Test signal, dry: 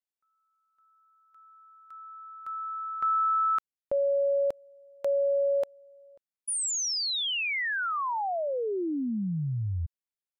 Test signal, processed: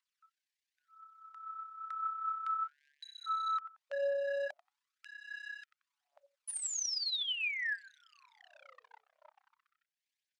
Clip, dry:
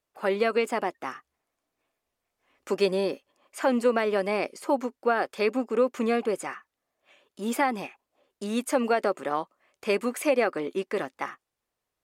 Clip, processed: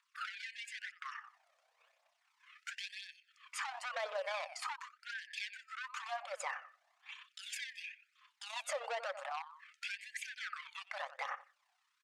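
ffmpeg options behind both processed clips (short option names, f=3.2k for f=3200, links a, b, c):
-filter_complex "[0:a]tremolo=f=32:d=0.462,asplit=2[a][b];[b]adelay=89,lowpass=f=2.9k:p=1,volume=-19dB,asplit=2[c][d];[d]adelay=89,lowpass=f=2.9k:p=1,volume=0.18[e];[a][c][e]amix=inputs=3:normalize=0,asoftclip=type=hard:threshold=-27.5dB,acompressor=threshold=-40dB:ratio=5:attack=0.81:release=286:knee=1:detection=rms,lowshelf=f=310:g=-9,aphaser=in_gain=1:out_gain=1:delay=1.7:decay=0.47:speed=0.97:type=triangular,lowpass=6.2k,bass=f=250:g=-5,treble=f=4k:g=-2,alimiter=level_in=15.5dB:limit=-24dB:level=0:latency=1:release=297,volume=-15.5dB,afftfilt=real='re*gte(b*sr/1024,460*pow(1600/460,0.5+0.5*sin(2*PI*0.42*pts/sr)))':imag='im*gte(b*sr/1024,460*pow(1600/460,0.5+0.5*sin(2*PI*0.42*pts/sr)))':win_size=1024:overlap=0.75,volume=11dB"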